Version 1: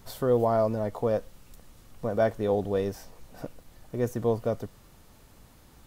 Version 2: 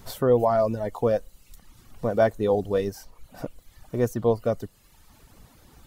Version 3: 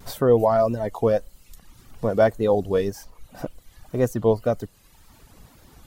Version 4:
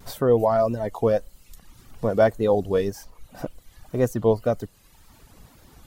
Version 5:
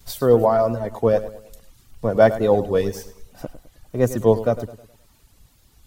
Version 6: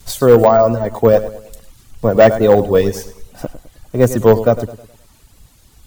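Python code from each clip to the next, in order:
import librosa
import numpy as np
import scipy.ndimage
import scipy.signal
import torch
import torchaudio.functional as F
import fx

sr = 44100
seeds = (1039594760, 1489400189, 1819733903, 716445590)

y1 = fx.dereverb_blind(x, sr, rt60_s=0.97)
y1 = y1 * librosa.db_to_amplitude(4.5)
y2 = fx.wow_flutter(y1, sr, seeds[0], rate_hz=2.1, depth_cents=68.0)
y2 = y2 * librosa.db_to_amplitude(2.5)
y3 = fx.rider(y2, sr, range_db=10, speed_s=2.0)
y4 = fx.echo_feedback(y3, sr, ms=105, feedback_pct=49, wet_db=-13.5)
y4 = fx.band_widen(y4, sr, depth_pct=40)
y4 = y4 * librosa.db_to_amplitude(2.5)
y5 = np.repeat(y4[::2], 2)[:len(y4)]
y5 = np.clip(y5, -10.0 ** (-9.0 / 20.0), 10.0 ** (-9.0 / 20.0))
y5 = y5 * librosa.db_to_amplitude(7.5)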